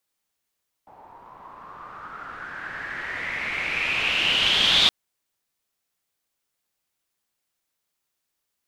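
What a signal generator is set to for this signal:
filter sweep on noise white, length 4.02 s lowpass, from 830 Hz, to 3,600 Hz, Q 6.6, exponential, gain ramp +25.5 dB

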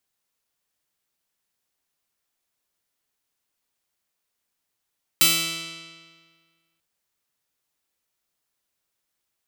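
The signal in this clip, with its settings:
Karplus-Strong string E3, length 1.59 s, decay 1.71 s, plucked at 0.4, bright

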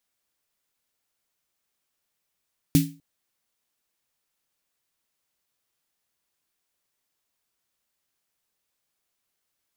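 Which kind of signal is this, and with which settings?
synth snare length 0.25 s, tones 160 Hz, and 280 Hz, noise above 2,100 Hz, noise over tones −9.5 dB, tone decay 0.33 s, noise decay 0.28 s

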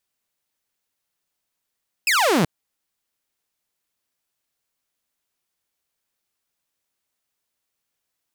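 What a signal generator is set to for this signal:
single falling chirp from 2,700 Hz, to 140 Hz, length 0.38 s saw, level −13 dB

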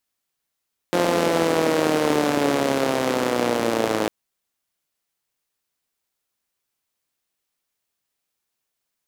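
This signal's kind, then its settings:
pulse-train model of a four-cylinder engine, changing speed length 3.15 s, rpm 5,300, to 3,200, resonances 300/470 Hz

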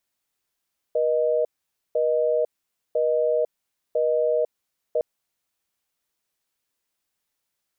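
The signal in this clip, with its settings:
call progress tone busy tone, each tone −21.5 dBFS 4.06 s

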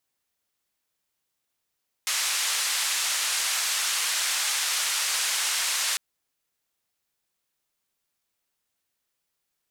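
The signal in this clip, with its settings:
band-limited noise 1,200–8,700 Hz, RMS −26.5 dBFS 3.90 s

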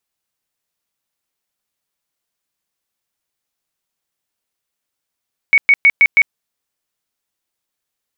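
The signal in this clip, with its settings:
tone bursts 2,230 Hz, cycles 109, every 0.16 s, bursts 5, −5.5 dBFS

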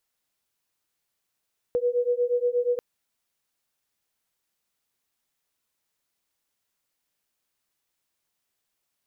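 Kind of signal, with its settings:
two tones that beat 483 Hz, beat 8.4 Hz, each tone −24.5 dBFS 1.04 s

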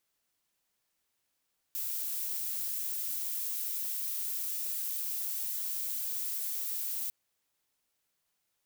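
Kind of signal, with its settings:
noise violet, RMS −35 dBFS 5.35 s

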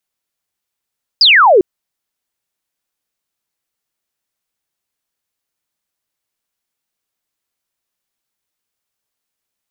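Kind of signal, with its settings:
single falling chirp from 5,200 Hz, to 340 Hz, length 0.40 s sine, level −4.5 dB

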